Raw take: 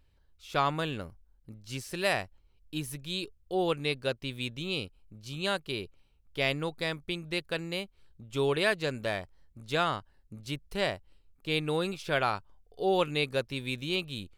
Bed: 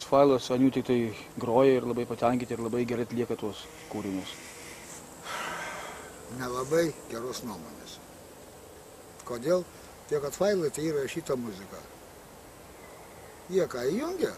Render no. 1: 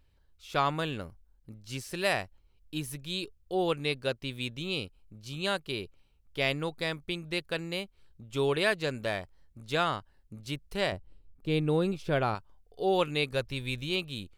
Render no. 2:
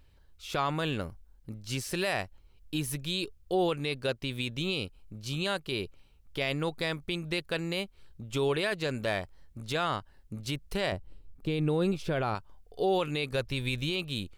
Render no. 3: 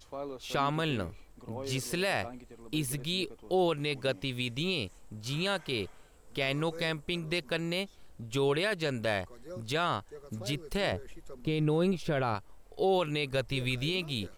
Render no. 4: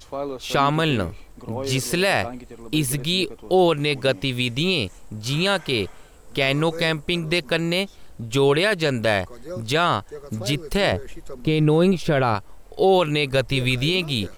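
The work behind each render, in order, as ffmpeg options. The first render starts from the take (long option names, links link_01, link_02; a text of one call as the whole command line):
ffmpeg -i in.wav -filter_complex "[0:a]asettb=1/sr,asplit=3[link_01][link_02][link_03];[link_01]atrim=end=10.924[link_04];[link_02]atrim=start=10.92:end=12.35,asetpts=PTS-STARTPTS,afade=type=in:duration=0.004:curve=qsin,afade=type=out:start_time=1.426:duration=0.004:curve=qsin,tiltshelf=frequency=710:gain=6.5[link_05];[link_03]atrim=start=12.346[link_06];[link_04][link_05]acrossfade=duration=0.004:curve1=hsin:curve2=qsin[link_07];[link_07][link_06]acrossfade=duration=0.004:curve1=qsin:curve2=hsin,asplit=3[link_08][link_09][link_10];[link_08]afade=type=out:start_time=13.31:duration=0.02[link_11];[link_09]asubboost=boost=3:cutoff=110,afade=type=in:start_time=13.31:duration=0.02,afade=type=out:start_time=13.9:duration=0.02[link_12];[link_10]afade=type=in:start_time=13.9:duration=0.02[link_13];[link_11][link_12][link_13]amix=inputs=3:normalize=0" out.wav
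ffmpeg -i in.wav -filter_complex "[0:a]asplit=2[link_01][link_02];[link_02]acompressor=threshold=-35dB:ratio=6,volume=0dB[link_03];[link_01][link_03]amix=inputs=2:normalize=0,alimiter=limit=-19dB:level=0:latency=1:release=25" out.wav
ffmpeg -i in.wav -i bed.wav -filter_complex "[1:a]volume=-18.5dB[link_01];[0:a][link_01]amix=inputs=2:normalize=0" out.wav
ffmpeg -i in.wav -af "volume=10.5dB" out.wav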